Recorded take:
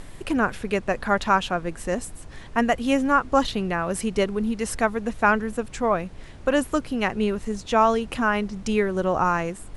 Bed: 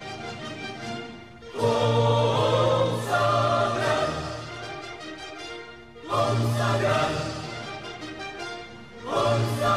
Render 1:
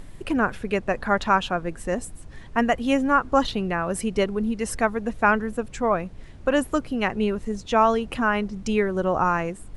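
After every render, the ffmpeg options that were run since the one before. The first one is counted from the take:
-af "afftdn=nr=6:nf=-41"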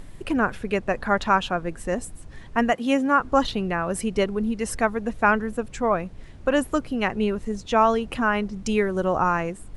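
-filter_complex "[0:a]asettb=1/sr,asplit=3[a][b][c];[a]atrim=end=2.734[d];[b]atrim=start=2.73:end=3.2,asetpts=PTS-STARTPTS,afade=t=in:d=0.004:c=qsin,afade=t=out:st=0.466:d=0.004:c=qsin,highpass=f=150:w=0.5412,highpass=f=150:w=1.3066[e];[c]atrim=start=3.196[f];[d][e]acrossfade=d=0.004:c1=hsin:c2=qsin[g];[g][f]acrossfade=d=0.004:c1=qsin:c2=hsin,asettb=1/sr,asplit=3[h][i][j];[h]atrim=end=8.654[k];[i]atrim=start=8.65:end=9.17,asetpts=PTS-STARTPTS,afade=t=in:d=0.004:c=qsin,afade=t=out:st=0.516:d=0.004:c=qsin,highshelf=f=6.9k:g=7[l];[j]atrim=start=9.166[m];[k][l]acrossfade=d=0.004:c1=hsin:c2=qsin[n];[n][m]acrossfade=d=0.004:c1=qsin:c2=hsin"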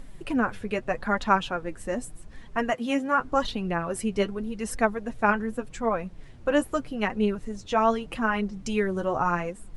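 -af "flanger=delay=3.6:depth=6.9:regen=33:speed=0.84:shape=triangular"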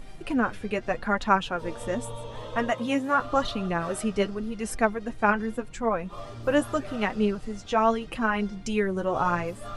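-filter_complex "[1:a]volume=-17.5dB[a];[0:a][a]amix=inputs=2:normalize=0"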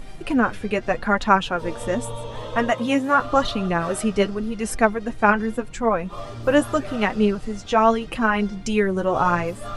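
-af "volume=5.5dB,alimiter=limit=-3dB:level=0:latency=1"

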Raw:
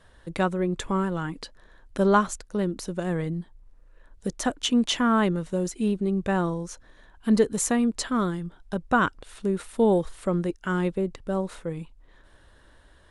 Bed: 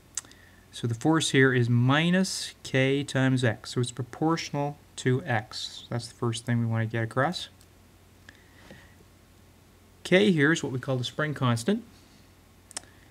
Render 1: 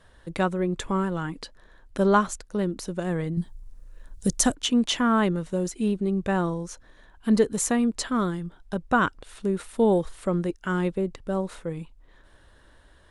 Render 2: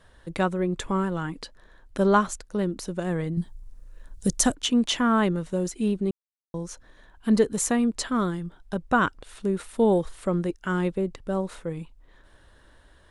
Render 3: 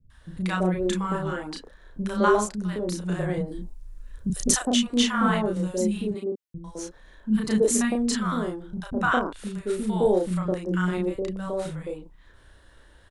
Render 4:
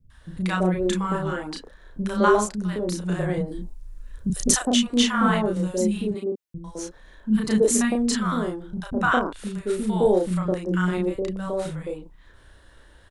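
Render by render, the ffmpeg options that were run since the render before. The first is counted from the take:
-filter_complex "[0:a]asettb=1/sr,asplit=3[a][b][c];[a]atrim=end=3.374[d];[b]atrim=start=3.37:end=4.55,asetpts=PTS-STARTPTS,afade=t=in:d=0.004:c=qsin,afade=t=out:st=1.176:d=0.004:c=qsin,bass=f=250:g=9,treble=f=4k:g=13[e];[c]atrim=start=4.546[f];[d][e]acrossfade=d=0.004:c1=hsin:c2=qsin[g];[g][f]acrossfade=d=0.004:c1=qsin:c2=hsin"
-filter_complex "[0:a]asplit=3[a][b][c];[a]atrim=end=6.11,asetpts=PTS-STARTPTS,afade=t=out:st=6.106:d=0.004:c=hsin[d];[b]atrim=start=6.11:end=6.54,asetpts=PTS-STARTPTS,volume=0[e];[c]atrim=start=6.54,asetpts=PTS-STARTPTS,afade=t=in:d=0.004:c=hsin[f];[d][e][f]concat=n=3:v=0:a=1"
-filter_complex "[0:a]asplit=2[a][b];[b]adelay=33,volume=-2.5dB[c];[a][c]amix=inputs=2:normalize=0,acrossover=split=240|840[d][e][f];[f]adelay=100[g];[e]adelay=210[h];[d][h][g]amix=inputs=3:normalize=0"
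-af "volume=2dB"

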